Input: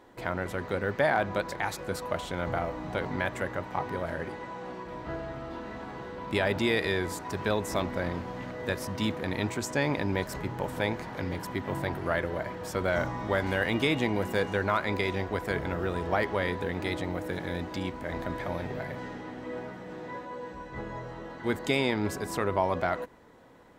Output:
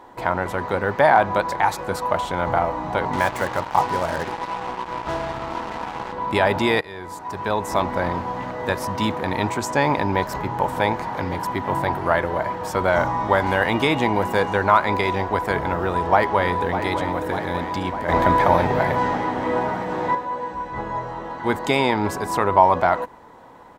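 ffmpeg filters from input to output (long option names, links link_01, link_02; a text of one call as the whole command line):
ffmpeg -i in.wav -filter_complex "[0:a]asettb=1/sr,asplit=3[link_01][link_02][link_03];[link_01]atrim=end=3.134[link_04];[link_02]atrim=start=3.13:end=6.13,asetpts=PTS-STARTPTS,afade=type=in:duration=0.004:curve=qsin,afade=type=out:start_time=2.996:duration=0.004:curve=qsin,acrusher=bits=5:mix=0:aa=0.5[link_05];[link_03]atrim=start=6.126[link_06];[link_04][link_05]acrossfade=duration=0.004:curve1=hsin:curve2=qsin[link_07];[link_07][link_06]acrossfade=duration=0.004:curve1=qsin:curve2=hsin,asettb=1/sr,asplit=3[link_08][link_09][link_10];[link_08]atrim=end=10.054[link_11];[link_09]atrim=start=10.05:end=10.52,asetpts=PTS-STARTPTS,afade=type=in:duration=0.004:curve=qsin,afade=type=out:start_time=0.466:duration=0.004:curve=qsin,equalizer=frequency=8900:width=2.9:gain=-5.5[link_12];[link_10]atrim=start=10.516[link_13];[link_11][link_12]acrossfade=duration=0.004:curve1=hsin:curve2=qsin[link_14];[link_14][link_13]acrossfade=duration=0.004:curve1=qsin:curve2=hsin,asplit=2[link_15][link_16];[link_16]afade=type=in:start_time=15.77:duration=0.01,afade=type=out:start_time=16.78:duration=0.01,aecho=0:1:600|1200|1800|2400|3000|3600|4200|4800|5400|6000:0.298538|0.208977|0.146284|0.102399|0.071679|0.0501753|0.0351227|0.0245859|0.0172101|0.0120471[link_17];[link_15][link_17]amix=inputs=2:normalize=0,asettb=1/sr,asplit=3[link_18][link_19][link_20];[link_18]atrim=end=18.084[link_21];[link_19]atrim=start=18.08:end=20.15,asetpts=PTS-STARTPTS,afade=type=in:duration=0.004:curve=qsin,afade=type=out:start_time=2.066:duration=0.004:curve=qsin,acontrast=78[link_22];[link_20]atrim=start=20.146[link_23];[link_21][link_22]acrossfade=duration=0.004:curve1=hsin:curve2=qsin[link_24];[link_24][link_23]acrossfade=duration=0.004:curve1=qsin:curve2=hsin,asplit=2[link_25][link_26];[link_25]atrim=end=6.81,asetpts=PTS-STARTPTS,afade=type=out:start_time=6.806:duration=0.004:curve=hsin:silence=0.1[link_27];[link_26]atrim=start=6.81,asetpts=PTS-STARTPTS,afade=type=in:duration=1.17:silence=0.1[link_28];[link_27][link_28]concat=n=2:v=0:a=1,equalizer=frequency=920:width=1.8:gain=11,volume=5.5dB" out.wav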